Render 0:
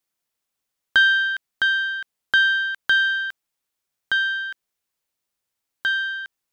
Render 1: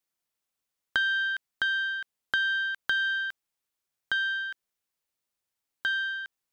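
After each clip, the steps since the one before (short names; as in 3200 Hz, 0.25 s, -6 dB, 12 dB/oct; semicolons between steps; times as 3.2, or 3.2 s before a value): compressor 4:1, threshold -20 dBFS, peak gain reduction 7 dB; gain -4.5 dB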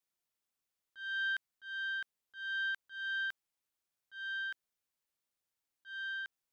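auto swell 0.365 s; gain -4 dB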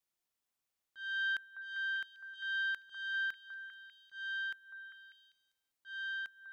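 delay with a stepping band-pass 0.198 s, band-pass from 940 Hz, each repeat 0.7 oct, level -6 dB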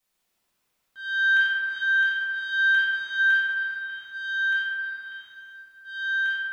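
reverb RT60 3.2 s, pre-delay 4 ms, DRR -9 dB; gain +6.5 dB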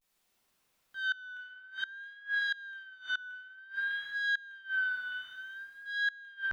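flipped gate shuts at -22 dBFS, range -25 dB; vibrato 0.54 Hz 82 cents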